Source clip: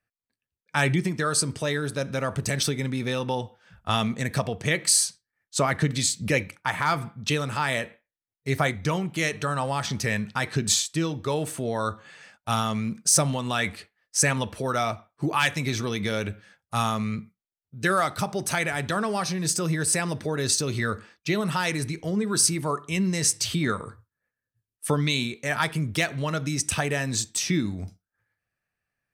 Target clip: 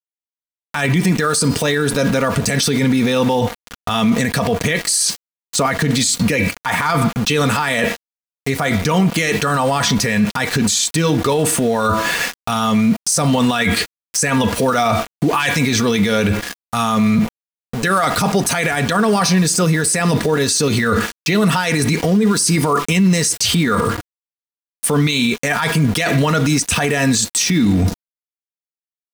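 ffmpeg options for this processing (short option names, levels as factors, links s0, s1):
-af "bandreject=f=329.1:t=h:w=4,bandreject=f=658.2:t=h:w=4,bandreject=f=987.3:t=h:w=4,bandreject=f=1316.4:t=h:w=4,bandreject=f=1645.5:t=h:w=4,bandreject=f=1974.6:t=h:w=4,bandreject=f=2303.7:t=h:w=4,bandreject=f=2632.8:t=h:w=4,bandreject=f=2961.9:t=h:w=4,bandreject=f=3291:t=h:w=4,bandreject=f=3620.1:t=h:w=4,bandreject=f=3949.2:t=h:w=4,bandreject=f=4278.3:t=h:w=4,bandreject=f=4607.4:t=h:w=4,bandreject=f=4936.5:t=h:w=4,areverse,acompressor=threshold=0.0224:ratio=10,areverse,aeval=exprs='val(0)*gte(abs(val(0)),0.00335)':c=same,aecho=1:1:4.2:0.43,alimiter=level_in=59.6:limit=0.891:release=50:level=0:latency=1,volume=0.473"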